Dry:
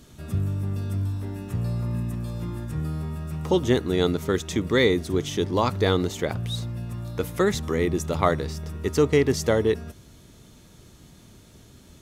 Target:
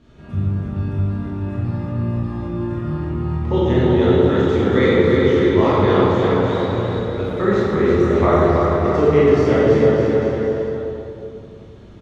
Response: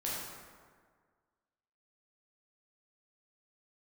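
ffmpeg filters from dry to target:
-filter_complex "[0:a]lowpass=2600,aecho=1:1:330|610.5|848.9|1052|1224:0.631|0.398|0.251|0.158|0.1[s0];[1:a]atrim=start_sample=2205,asetrate=30429,aresample=44100[s1];[s0][s1]afir=irnorm=-1:irlink=0,volume=0.891"

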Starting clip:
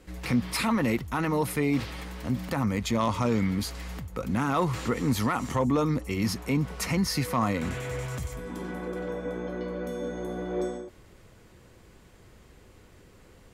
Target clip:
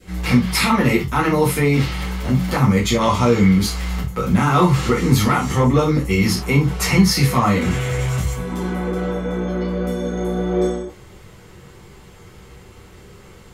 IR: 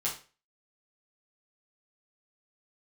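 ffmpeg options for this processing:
-filter_complex "[0:a]adynamicequalizer=threshold=0.00562:dfrequency=940:dqfactor=1.8:tfrequency=940:tqfactor=1.8:attack=5:release=100:ratio=0.375:range=2:mode=cutabove:tftype=bell[s0];[1:a]atrim=start_sample=2205,atrim=end_sample=3969[s1];[s0][s1]afir=irnorm=-1:irlink=0,volume=2.11"

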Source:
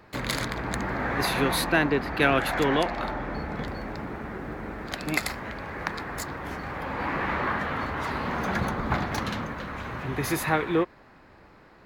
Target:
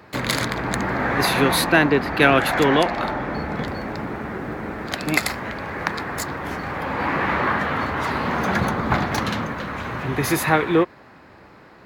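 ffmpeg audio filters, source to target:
-af "highpass=74,volume=2.11"

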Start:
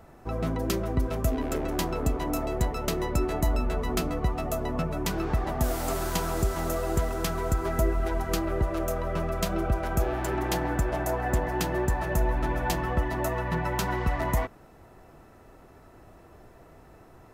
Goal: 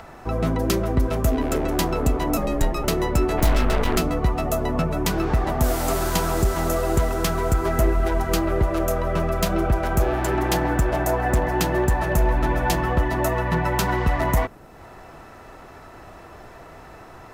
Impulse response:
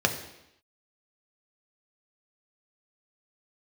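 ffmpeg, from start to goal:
-filter_complex "[0:a]asettb=1/sr,asplit=3[s0][s1][s2];[s0]atrim=end=2.374[s3];[s1]atrim=start=2.37:end=2.84,asetpts=PTS-STARTPTS,afade=t=in:d=0.004:c=qsin,afade=t=out:st=0.466:d=0.004:c=qsin,afreqshift=-85[s4];[s2]atrim=start=2.836[s5];[s3][s4]acrossfade=d=0.004:c1=hsin:c2=qsin[s6];[s6][s5]acrossfade=d=0.004:c1=qsin:c2=hsin,acrossover=split=680|6800[s7][s8][s9];[s8]acompressor=mode=upward:threshold=0.00631:ratio=2.5[s10];[s7][s10][s9]amix=inputs=3:normalize=0,volume=8.91,asoftclip=hard,volume=0.112,asplit=3[s11][s12][s13];[s11]afade=t=out:st=3.37:d=0.02[s14];[s12]aeval=exprs='0.119*(cos(1*acos(clip(val(0)/0.119,-1,1)))-cos(1*PI/2))+0.0237*(cos(8*acos(clip(val(0)/0.119,-1,1)))-cos(8*PI/2))':c=same,afade=t=in:st=3.37:d=0.02,afade=t=out:st=3.96:d=0.02[s15];[s13]afade=t=in:st=3.96:d=0.02[s16];[s14][s15][s16]amix=inputs=3:normalize=0,volume=2.11"

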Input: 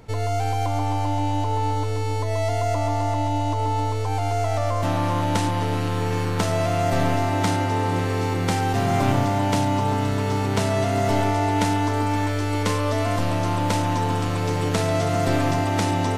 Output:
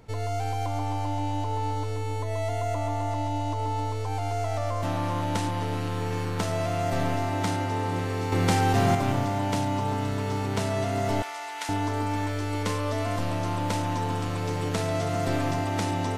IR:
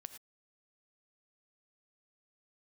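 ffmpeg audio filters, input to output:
-filter_complex "[0:a]asettb=1/sr,asplit=3[s0][s1][s2];[s0]atrim=end=1.954[s3];[s1]atrim=start=1.95:end=3.11,asetpts=PTS-STARTPTS,afade=t=in:d=0.004:c=qsin,afade=t=out:st=1.156:d=0.004:c=qsin,equalizer=f=5000:t=o:w=0.29:g=-8[s4];[s2]atrim=start=3.106[s5];[s3][s4]acrossfade=d=0.004:c1=hsin:c2=qsin[s6];[s6][s5]acrossfade=d=0.004:c1=qsin:c2=hsin,asettb=1/sr,asplit=3[s7][s8][s9];[s7]atrim=end=8.324[s10];[s8]atrim=start=8.32:end=8.95,asetpts=PTS-STARTPTS,afade=t=in:d=0.004:c=qsin,afade=t=out:st=0.626:d=0.004:c=qsin,acontrast=46[s11];[s9]atrim=start=8.946[s12];[s10][s11]acrossfade=d=0.004:c1=hsin:c2=qsin[s13];[s13][s12]acrossfade=d=0.004:c1=qsin:c2=hsin,asettb=1/sr,asplit=3[s14][s15][s16];[s14]atrim=end=11.224[s17];[s15]atrim=start=11.22:end=11.69,asetpts=PTS-STARTPTS,afade=t=in:d=0.004:c=qsin,afade=t=out:st=0.466:d=0.004:c=qsin,highpass=1200[s18];[s16]atrim=start=11.686[s19];[s17][s18]acrossfade=d=0.004:c1=hsin:c2=qsin[s20];[s20][s19]acrossfade=d=0.004:c1=qsin:c2=hsin,volume=0.531"

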